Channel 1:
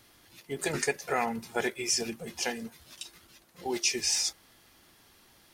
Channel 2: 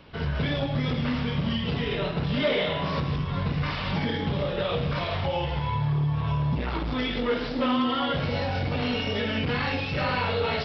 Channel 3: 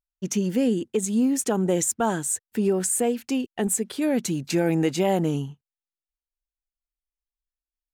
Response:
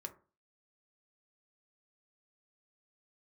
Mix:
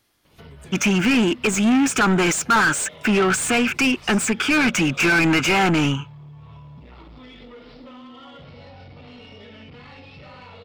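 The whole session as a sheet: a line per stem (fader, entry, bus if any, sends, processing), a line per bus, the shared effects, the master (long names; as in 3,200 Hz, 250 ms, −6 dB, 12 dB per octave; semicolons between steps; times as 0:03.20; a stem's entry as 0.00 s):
−7.0 dB, 0.00 s, bus A, no send, no processing
−7.0 dB, 0.25 s, bus A, no send, notch filter 1,600 Hz, Q 7.3
+2.5 dB, 0.50 s, no bus, no send, flat-topped bell 1,800 Hz +13.5 dB 1.2 octaves; phaser with its sweep stopped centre 2,800 Hz, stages 8; mid-hump overdrive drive 27 dB, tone 2,800 Hz, clips at −12 dBFS
bus A: 0.0 dB, soft clipping −26 dBFS, distortion −20 dB; downward compressor 5 to 1, threshold −41 dBFS, peak gain reduction 10 dB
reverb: not used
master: no processing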